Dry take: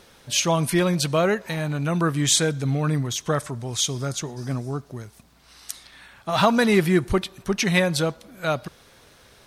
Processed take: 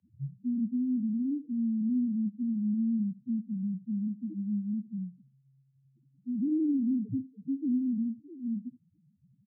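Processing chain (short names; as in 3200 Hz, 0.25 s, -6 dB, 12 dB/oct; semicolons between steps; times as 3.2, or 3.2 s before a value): tape start at the beginning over 0.46 s; inverse Chebyshev low-pass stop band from 1800 Hz, stop band 80 dB; in parallel at +2.5 dB: compressor, threshold -35 dBFS, peak gain reduction 16 dB; on the sum: sample leveller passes 2; loudest bins only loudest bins 1; frequency shift +75 Hz; on a send: echo 73 ms -17.5 dB; on the sum: gain -6.5 dB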